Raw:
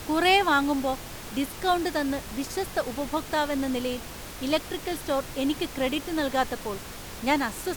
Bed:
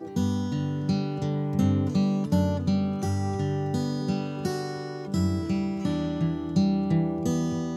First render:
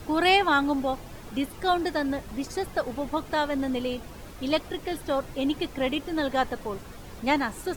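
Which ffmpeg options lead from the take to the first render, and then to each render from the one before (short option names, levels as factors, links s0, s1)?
-af "afftdn=nr=10:nf=-40"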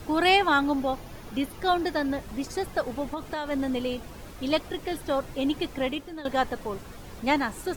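-filter_complex "[0:a]asettb=1/sr,asplit=3[s0][s1][s2];[s0]atrim=end=0.594[s3];[s1]atrim=start=0.59:end=2.21,asetpts=PTS-STARTPTS,afade=t=in:d=0.004:c=qsin,afade=t=out:st=1.616:d=0.004:c=qsin,bandreject=f=7900:w=6.3[s4];[s2]atrim=start=2.206[s5];[s3][s4]acrossfade=d=0.004:c1=hsin:c2=qsin[s6];[s6][s5]acrossfade=d=0.004:c1=qsin:c2=hsin,asettb=1/sr,asplit=3[s7][s8][s9];[s7]atrim=end=3.034[s10];[s8]atrim=start=3.03:end=3.51,asetpts=PTS-STARTPTS,afade=t=in:d=0.004:c=qsin,afade=t=out:st=0.476:d=0.004:c=qsin,acompressor=threshold=0.0447:ratio=6:attack=3.2:release=140:knee=1:detection=peak[s11];[s9]atrim=start=3.506[s12];[s10][s11]acrossfade=d=0.004:c1=hsin:c2=qsin[s13];[s13][s12]acrossfade=d=0.004:c1=qsin:c2=hsin,asplit=2[s14][s15];[s14]atrim=end=6.25,asetpts=PTS-STARTPTS,afade=t=out:st=5.77:d=0.48:silence=0.16788[s16];[s15]atrim=start=6.25,asetpts=PTS-STARTPTS,afade=t=in:d=0.004:c=hsin:silence=0.16788[s17];[s16][s17]concat=n=2:v=0:a=1"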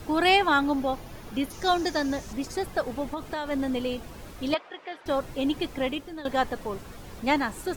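-filter_complex "[0:a]asettb=1/sr,asplit=3[s0][s1][s2];[s0]atrim=end=1.504[s3];[s1]atrim=start=1.5:end=2.33,asetpts=PTS-STARTPTS,afade=t=in:d=0.004:c=qsin,afade=t=out:st=0.826:d=0.004:c=qsin,equalizer=f=6200:t=o:w=0.68:g=13.5[s4];[s2]atrim=start=2.326[s5];[s3][s4]acrossfade=d=0.004:c1=hsin:c2=qsin[s6];[s6][s5]acrossfade=d=0.004:c1=qsin:c2=hsin,asettb=1/sr,asplit=3[s7][s8][s9];[s7]atrim=end=4.544[s10];[s8]atrim=start=4.54:end=5.06,asetpts=PTS-STARTPTS,afade=t=in:d=0.004:c=qsin,afade=t=out:st=0.516:d=0.004:c=qsin,highpass=680,lowpass=2600[s11];[s9]atrim=start=5.056[s12];[s10][s11]acrossfade=d=0.004:c1=hsin:c2=qsin[s13];[s13][s12]acrossfade=d=0.004:c1=qsin:c2=hsin"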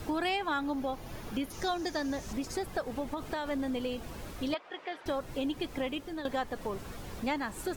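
-af "acompressor=threshold=0.0251:ratio=3"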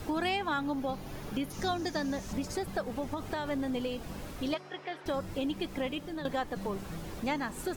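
-filter_complex "[1:a]volume=0.1[s0];[0:a][s0]amix=inputs=2:normalize=0"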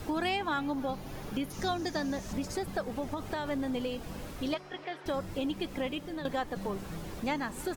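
-filter_complex "[0:a]asplit=2[s0][s1];[s1]adelay=303.2,volume=0.0891,highshelf=f=4000:g=-6.82[s2];[s0][s2]amix=inputs=2:normalize=0"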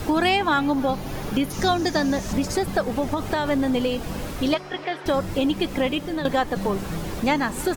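-af "volume=3.55"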